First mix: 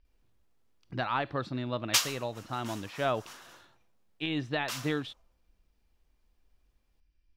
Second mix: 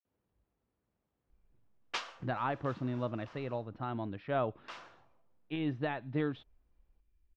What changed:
speech: entry +1.30 s; master: add tape spacing loss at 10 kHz 36 dB

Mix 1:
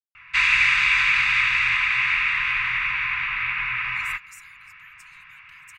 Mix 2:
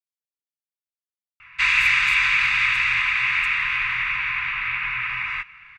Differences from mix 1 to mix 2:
speech: entry -2.25 s; background: entry +1.25 s

